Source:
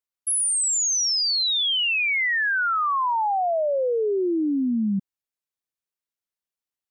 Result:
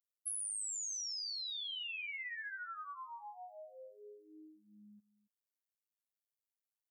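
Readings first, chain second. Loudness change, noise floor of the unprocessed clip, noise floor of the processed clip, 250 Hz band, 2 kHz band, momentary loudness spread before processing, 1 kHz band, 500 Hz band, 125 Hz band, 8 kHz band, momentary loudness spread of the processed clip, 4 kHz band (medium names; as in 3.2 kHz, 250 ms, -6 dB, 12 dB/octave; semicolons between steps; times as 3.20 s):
-18.5 dB, under -85 dBFS, under -85 dBFS, -36.5 dB, -21.0 dB, 4 LU, -25.5 dB, -31.5 dB, no reading, -18.0 dB, 19 LU, -19.5 dB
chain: differentiator; compression, threshold -33 dBFS, peak gain reduction 12.5 dB; robot voice 104 Hz; echo from a far wall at 47 m, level -18 dB; trim -5.5 dB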